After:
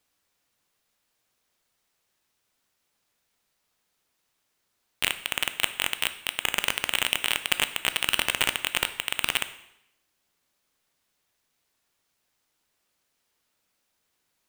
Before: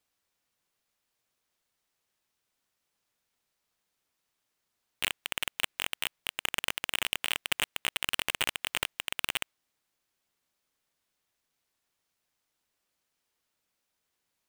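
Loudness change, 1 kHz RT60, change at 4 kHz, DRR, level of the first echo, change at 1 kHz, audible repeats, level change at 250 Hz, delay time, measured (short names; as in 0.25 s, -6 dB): +6.0 dB, 0.80 s, +6.0 dB, 10.5 dB, none, +6.0 dB, none, +6.0 dB, none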